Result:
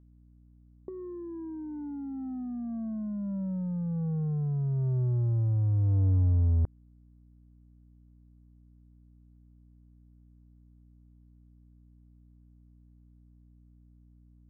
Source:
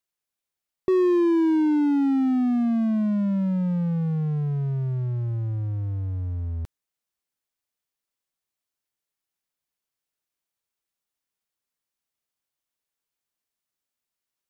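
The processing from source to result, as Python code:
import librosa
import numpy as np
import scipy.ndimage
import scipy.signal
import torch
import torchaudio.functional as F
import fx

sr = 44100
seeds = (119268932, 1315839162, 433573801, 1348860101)

y = scipy.signal.sosfilt(scipy.signal.bessel(8, 880.0, 'lowpass', norm='mag', fs=sr, output='sos'), x)
y = fx.over_compress(y, sr, threshold_db=-28.0, ratio=-0.5)
y = fx.add_hum(y, sr, base_hz=60, snr_db=25)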